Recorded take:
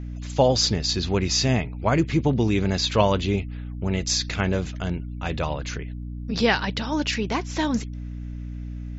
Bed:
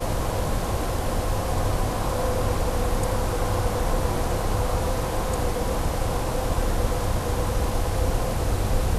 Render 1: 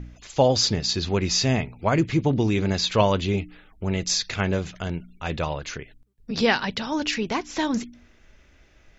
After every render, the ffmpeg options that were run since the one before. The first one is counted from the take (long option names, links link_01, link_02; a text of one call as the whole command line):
ffmpeg -i in.wav -af "bandreject=frequency=60:width_type=h:width=4,bandreject=frequency=120:width_type=h:width=4,bandreject=frequency=180:width_type=h:width=4,bandreject=frequency=240:width_type=h:width=4,bandreject=frequency=300:width_type=h:width=4" out.wav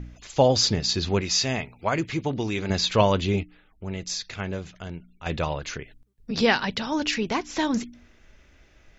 ffmpeg -i in.wav -filter_complex "[0:a]asettb=1/sr,asplit=3[link_01][link_02][link_03];[link_01]atrim=end=1.214[link_04];[link_02]atrim=start=1.21:end=2.7,asetpts=PTS-STARTPTS,afade=type=in:duration=0.004:curve=qsin,afade=type=out:start_time=1.486:duration=0.004:curve=qsin,lowshelf=frequency=450:gain=-8.5[link_05];[link_03]atrim=start=2.696[link_06];[link_04][link_05]acrossfade=duration=0.004:curve1=hsin:curve2=qsin[link_07];[link_07][link_06]acrossfade=duration=0.004:curve1=qsin:curve2=hsin,asplit=3[link_08][link_09][link_10];[link_08]atrim=end=3.432[link_11];[link_09]atrim=start=3.428:end=5.262,asetpts=PTS-STARTPTS,volume=-7dB[link_12];[link_10]atrim=start=5.258[link_13];[link_11][link_12]acrossfade=duration=0.004:curve1=hsin:curve2=hsin[link_14];[link_14][link_13]acrossfade=duration=0.004:curve1=hsin:curve2=hsin" out.wav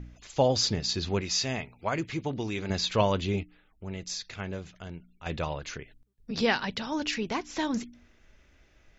ffmpeg -i in.wav -af "volume=-5dB" out.wav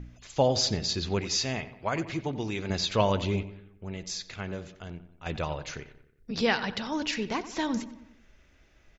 ffmpeg -i in.wav -filter_complex "[0:a]asplit=2[link_01][link_02];[link_02]adelay=91,lowpass=frequency=2900:poles=1,volume=-14dB,asplit=2[link_03][link_04];[link_04]adelay=91,lowpass=frequency=2900:poles=1,volume=0.53,asplit=2[link_05][link_06];[link_06]adelay=91,lowpass=frequency=2900:poles=1,volume=0.53,asplit=2[link_07][link_08];[link_08]adelay=91,lowpass=frequency=2900:poles=1,volume=0.53,asplit=2[link_09][link_10];[link_10]adelay=91,lowpass=frequency=2900:poles=1,volume=0.53[link_11];[link_01][link_03][link_05][link_07][link_09][link_11]amix=inputs=6:normalize=0" out.wav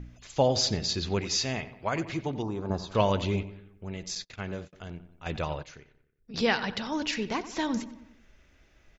ffmpeg -i in.wav -filter_complex "[0:a]asettb=1/sr,asplit=3[link_01][link_02][link_03];[link_01]atrim=end=2.424[link_04];[link_02]atrim=start=2.42:end=2.95,asetpts=PTS-STARTPTS,afade=type=in:duration=0.004:curve=qsin,afade=type=out:start_time=0.526:duration=0.004:curve=qsin,highshelf=frequency=1500:width_type=q:width=3:gain=-12.5[link_05];[link_03]atrim=start=2.946[link_06];[link_04][link_05]acrossfade=duration=0.004:curve1=hsin:curve2=qsin[link_07];[link_07][link_06]acrossfade=duration=0.004:curve1=qsin:curve2=hsin,asettb=1/sr,asplit=3[link_08][link_09][link_10];[link_08]atrim=end=4.154[link_11];[link_09]atrim=start=4.15:end=4.73,asetpts=PTS-STARTPTS,afade=type=in:duration=0.004:curve=qsin,afade=type=out:start_time=0.576:duration=0.004:curve=qsin,agate=range=-34dB:threshold=-44dB:ratio=16:release=100:detection=peak[link_12];[link_10]atrim=start=4.726[link_13];[link_11][link_12]acrossfade=duration=0.004:curve1=hsin:curve2=qsin[link_14];[link_14][link_13]acrossfade=duration=0.004:curve1=qsin:curve2=hsin,asplit=3[link_15][link_16][link_17];[link_15]atrim=end=5.632[link_18];[link_16]atrim=start=5.628:end=6.342,asetpts=PTS-STARTPTS,volume=-10dB[link_19];[link_17]atrim=start=6.338[link_20];[link_18][link_19]acrossfade=duration=0.004:curve1=hsin:curve2=hsin[link_21];[link_21][link_20]acrossfade=duration=0.004:curve1=hsin:curve2=hsin" out.wav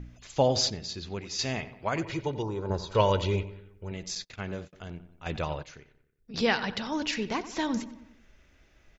ffmpeg -i in.wav -filter_complex "[0:a]asettb=1/sr,asplit=3[link_01][link_02][link_03];[link_01]atrim=end=2.034[link_04];[link_02]atrim=start=2.03:end=3.92,asetpts=PTS-STARTPTS,afade=type=in:duration=0.004:curve=qsin,afade=type=out:start_time=1.886:duration=0.004:curve=qsin,aecho=1:1:2.1:0.51,atrim=end_sample=83349[link_05];[link_03]atrim=start=3.916[link_06];[link_04][link_05]acrossfade=duration=0.004:curve1=hsin:curve2=qsin[link_07];[link_07][link_06]acrossfade=duration=0.004:curve1=qsin:curve2=hsin,asplit=3[link_08][link_09][link_10];[link_08]atrim=end=0.702[link_11];[link_09]atrim=start=0.698:end=1.392,asetpts=PTS-STARTPTS,volume=-7.5dB[link_12];[link_10]atrim=start=1.388[link_13];[link_11][link_12]acrossfade=duration=0.004:curve1=hsin:curve2=hsin[link_14];[link_14][link_13]acrossfade=duration=0.004:curve1=hsin:curve2=hsin" out.wav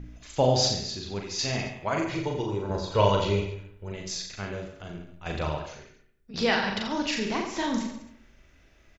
ffmpeg -i in.wav -filter_complex "[0:a]asplit=2[link_01][link_02];[link_02]adelay=37,volume=-11.5dB[link_03];[link_01][link_03]amix=inputs=2:normalize=0,aecho=1:1:40|86|138.9|199.7|269.7:0.631|0.398|0.251|0.158|0.1" out.wav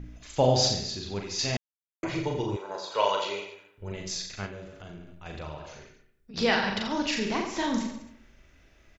ffmpeg -i in.wav -filter_complex "[0:a]asettb=1/sr,asplit=3[link_01][link_02][link_03];[link_01]atrim=end=2.564[link_04];[link_02]atrim=start=2.56:end=3.78,asetpts=PTS-STARTPTS,afade=type=in:duration=0.004:curve=qsin,afade=type=out:start_time=1.216:duration=0.004:curve=qsin,highpass=620[link_05];[link_03]atrim=start=3.776[link_06];[link_04][link_05]acrossfade=duration=0.004:curve1=hsin:curve2=qsin[link_07];[link_07][link_06]acrossfade=duration=0.004:curve1=qsin:curve2=hsin,asettb=1/sr,asplit=3[link_08][link_09][link_10];[link_08]atrim=end=4.464[link_11];[link_09]atrim=start=4.46:end=6.37,asetpts=PTS-STARTPTS,afade=type=in:duration=0.004:curve=qsin,afade=type=out:start_time=1.906:duration=0.004:curve=qsin,acompressor=threshold=-42dB:ratio=2:attack=3.2:release=140:knee=1:detection=peak[link_12];[link_10]atrim=start=6.366[link_13];[link_11][link_12]acrossfade=duration=0.004:curve1=hsin:curve2=qsin[link_14];[link_14][link_13]acrossfade=duration=0.004:curve1=qsin:curve2=hsin,asplit=3[link_15][link_16][link_17];[link_15]atrim=end=1.57,asetpts=PTS-STARTPTS,afade=type=out:start_time=1.566:duration=0.004:curve=hsin[link_18];[link_16]atrim=start=1.57:end=2.03,asetpts=PTS-STARTPTS,volume=0[link_19];[link_17]atrim=start=2.03,asetpts=PTS-STARTPTS,afade=type=in:duration=0.004:curve=hsin[link_20];[link_18][link_19][link_20]concat=n=3:v=0:a=1" out.wav